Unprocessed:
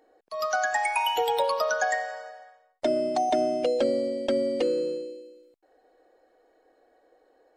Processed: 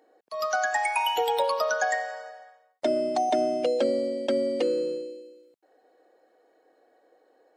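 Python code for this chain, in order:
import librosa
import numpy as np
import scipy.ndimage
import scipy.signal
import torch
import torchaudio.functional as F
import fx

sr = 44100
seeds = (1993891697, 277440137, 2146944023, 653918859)

y = scipy.signal.sosfilt(scipy.signal.butter(2, 140.0, 'highpass', fs=sr, output='sos'), x)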